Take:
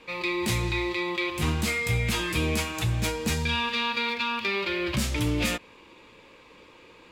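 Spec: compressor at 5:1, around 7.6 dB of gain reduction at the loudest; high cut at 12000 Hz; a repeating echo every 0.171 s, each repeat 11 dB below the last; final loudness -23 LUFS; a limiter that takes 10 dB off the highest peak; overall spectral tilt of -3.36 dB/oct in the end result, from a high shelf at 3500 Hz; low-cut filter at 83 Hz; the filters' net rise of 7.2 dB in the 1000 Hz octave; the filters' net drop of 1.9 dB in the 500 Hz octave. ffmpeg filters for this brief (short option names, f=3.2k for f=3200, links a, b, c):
-af "highpass=83,lowpass=12k,equalizer=f=500:t=o:g=-4.5,equalizer=f=1k:t=o:g=8.5,highshelf=f=3.5k:g=6,acompressor=threshold=-29dB:ratio=5,alimiter=level_in=3.5dB:limit=-24dB:level=0:latency=1,volume=-3.5dB,aecho=1:1:171|342|513:0.282|0.0789|0.0221,volume=12dB"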